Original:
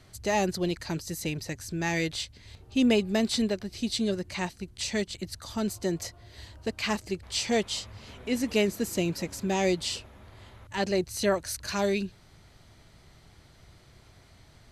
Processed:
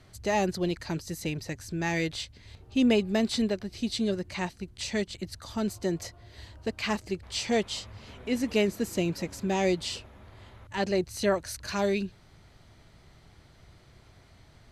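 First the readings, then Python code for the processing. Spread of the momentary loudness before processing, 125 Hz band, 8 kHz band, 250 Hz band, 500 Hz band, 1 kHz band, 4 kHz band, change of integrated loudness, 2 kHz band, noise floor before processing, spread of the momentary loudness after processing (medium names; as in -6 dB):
10 LU, 0.0 dB, -4.0 dB, 0.0 dB, 0.0 dB, 0.0 dB, -2.0 dB, -0.5 dB, -1.0 dB, -57 dBFS, 11 LU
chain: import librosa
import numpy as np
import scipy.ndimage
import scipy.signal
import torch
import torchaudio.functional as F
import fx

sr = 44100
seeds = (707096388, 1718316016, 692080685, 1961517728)

y = fx.high_shelf(x, sr, hz=4800.0, db=-5.5)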